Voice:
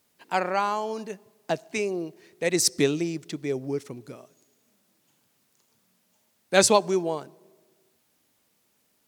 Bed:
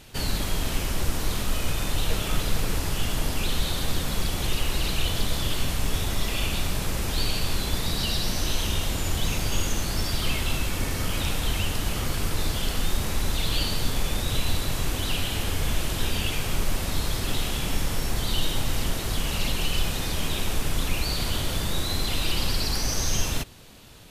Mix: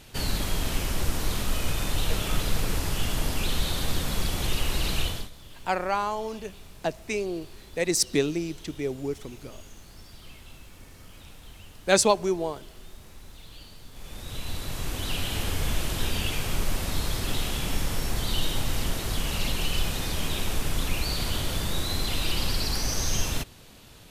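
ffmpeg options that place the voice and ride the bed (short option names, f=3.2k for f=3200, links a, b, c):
-filter_complex "[0:a]adelay=5350,volume=-1.5dB[a];[1:a]volume=18.5dB,afade=t=out:st=5:d=0.3:silence=0.1,afade=t=in:st=13.91:d=1.47:silence=0.105925[b];[a][b]amix=inputs=2:normalize=0"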